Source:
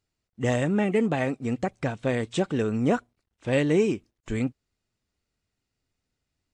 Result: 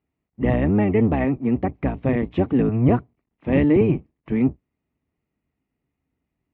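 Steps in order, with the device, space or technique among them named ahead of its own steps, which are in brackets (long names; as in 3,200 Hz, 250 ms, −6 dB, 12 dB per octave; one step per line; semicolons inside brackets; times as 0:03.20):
sub-octave bass pedal (sub-octave generator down 1 octave, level +3 dB; loudspeaker in its box 77–2,300 Hz, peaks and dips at 100 Hz −8 dB, 270 Hz +4 dB, 530 Hz −4 dB, 1,500 Hz −10 dB)
level +4 dB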